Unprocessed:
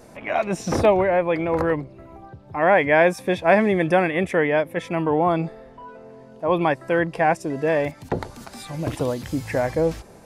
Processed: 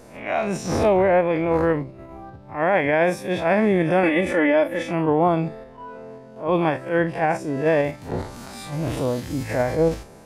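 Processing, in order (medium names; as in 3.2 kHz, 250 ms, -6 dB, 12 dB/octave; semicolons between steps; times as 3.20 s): spectral blur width 81 ms; 4.03–4.91 s: comb 3.5 ms, depth 89%; in parallel at -1.5 dB: level held to a coarse grid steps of 11 dB; on the sum: loudness maximiser +9 dB; attacks held to a fixed rise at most 160 dB/s; trim -9 dB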